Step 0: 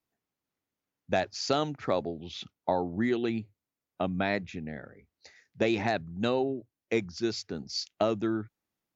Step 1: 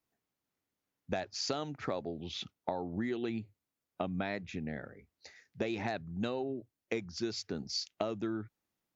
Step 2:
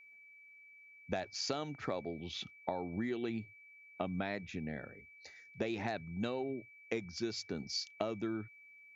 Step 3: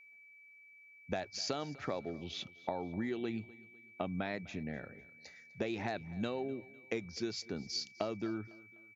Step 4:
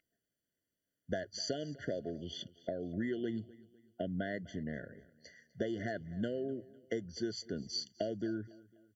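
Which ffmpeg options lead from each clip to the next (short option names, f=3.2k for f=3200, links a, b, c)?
-af "acompressor=threshold=-32dB:ratio=5"
-af "aeval=exprs='val(0)+0.002*sin(2*PI*2300*n/s)':c=same,volume=-2dB"
-af "aecho=1:1:251|502|753:0.0891|0.0357|0.0143"
-af "afftfilt=real='re*eq(mod(floor(b*sr/1024/700),2),0)':imag='im*eq(mod(floor(b*sr/1024/700),2),0)':win_size=1024:overlap=0.75,volume=1dB"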